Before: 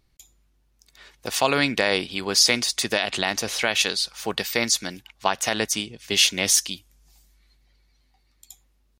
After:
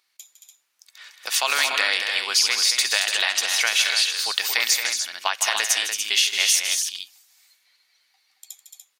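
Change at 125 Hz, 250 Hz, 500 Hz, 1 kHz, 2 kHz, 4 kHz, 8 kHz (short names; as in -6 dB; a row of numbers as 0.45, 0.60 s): under -30 dB, under -20 dB, -10.0 dB, -1.5 dB, +3.5 dB, +3.0 dB, +2.5 dB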